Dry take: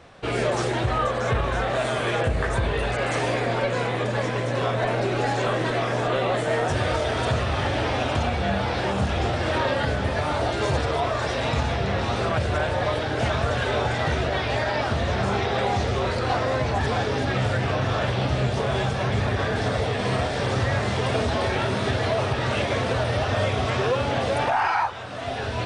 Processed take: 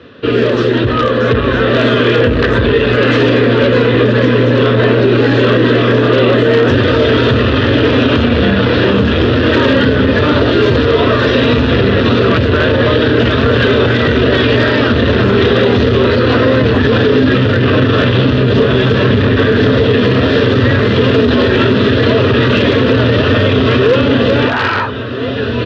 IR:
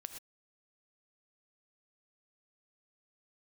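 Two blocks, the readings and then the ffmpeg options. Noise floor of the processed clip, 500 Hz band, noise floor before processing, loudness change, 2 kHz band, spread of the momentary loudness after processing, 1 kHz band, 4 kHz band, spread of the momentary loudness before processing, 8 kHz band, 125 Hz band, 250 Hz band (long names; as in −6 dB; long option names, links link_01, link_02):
−14 dBFS, +14.5 dB, −27 dBFS, +13.5 dB, +12.5 dB, 2 LU, +6.5 dB, +13.5 dB, 1 LU, can't be measured, +12.5 dB, +19.0 dB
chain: -filter_complex "[0:a]equalizer=frequency=790:width_type=o:width=1.2:gain=-11,bandreject=frequency=2200:width=8.2,acrossover=split=370[link_01][link_02];[link_02]aeval=exprs='(mod(11.9*val(0)+1,2)-1)/11.9':channel_layout=same[link_03];[link_01][link_03]amix=inputs=2:normalize=0,dynaudnorm=framelen=240:gausssize=13:maxgain=7dB,asplit=2[link_04][link_05];[link_05]aeval=exprs='0.0891*(abs(mod(val(0)/0.0891+3,4)-2)-1)':channel_layout=same,volume=-5.5dB[link_06];[link_04][link_06]amix=inputs=2:normalize=0,highpass=110,equalizer=frequency=160:width_type=q:width=4:gain=-8,equalizer=frequency=260:width_type=q:width=4:gain=8,equalizer=frequency=450:width_type=q:width=4:gain=7,equalizer=frequency=780:width_type=q:width=4:gain=-10,equalizer=frequency=2200:width_type=q:width=4:gain=-4,lowpass=frequency=3600:width=0.5412,lowpass=frequency=3600:width=1.3066,asplit=2[link_07][link_08];[link_08]adelay=1341,volume=-14dB,highshelf=frequency=4000:gain=-30.2[link_09];[link_07][link_09]amix=inputs=2:normalize=0,alimiter=level_in=12dB:limit=-1dB:release=50:level=0:latency=1,volume=-1dB"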